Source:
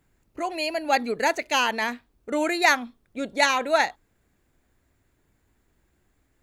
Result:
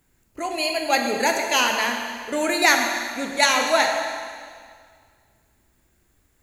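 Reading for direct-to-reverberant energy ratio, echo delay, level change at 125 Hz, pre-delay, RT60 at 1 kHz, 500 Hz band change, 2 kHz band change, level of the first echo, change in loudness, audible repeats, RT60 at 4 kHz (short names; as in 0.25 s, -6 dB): 2.0 dB, none, n/a, 5 ms, 2.0 s, +2.5 dB, +3.5 dB, none, +3.0 dB, none, 1.8 s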